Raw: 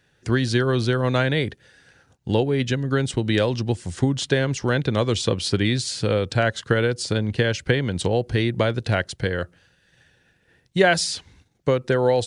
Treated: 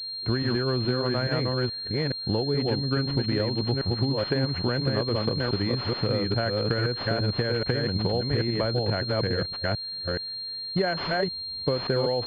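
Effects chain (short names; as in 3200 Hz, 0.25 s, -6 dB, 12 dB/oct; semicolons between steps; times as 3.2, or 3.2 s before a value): reverse delay 0.424 s, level -2 dB; compressor, threshold -22 dBFS, peak gain reduction 10 dB; pulse-width modulation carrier 4200 Hz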